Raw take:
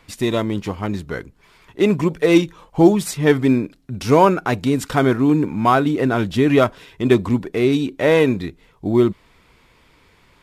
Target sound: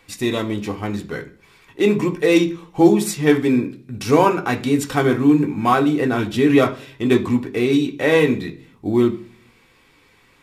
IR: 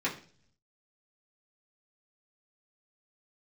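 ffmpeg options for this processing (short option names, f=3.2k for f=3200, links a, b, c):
-filter_complex "[0:a]asplit=2[a][b];[1:a]atrim=start_sample=2205,highshelf=f=3.7k:g=11.5[c];[b][c]afir=irnorm=-1:irlink=0,volume=-8.5dB[d];[a][d]amix=inputs=2:normalize=0,volume=-4.5dB"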